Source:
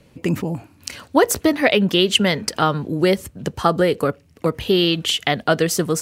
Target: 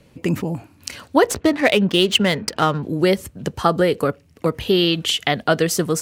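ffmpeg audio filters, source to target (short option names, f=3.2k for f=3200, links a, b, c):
-filter_complex "[0:a]asettb=1/sr,asplit=3[a][b][c];[a]atrim=end=1.274[d];[b]atrim=start=1.27:end=2.83,asetpts=PTS-STARTPTS,afade=t=in:d=0.004:c=qsin,afade=t=out:st=1.556:d=0.004:c=qsin,adynamicsmooth=sensitivity=4.5:basefreq=2.2k[e];[c]atrim=start=2.826[f];[d][e]acrossfade=d=0.004:c1=hsin:c2=qsin[g];[g][f]acrossfade=d=0.004:c1=qsin:c2=hsin"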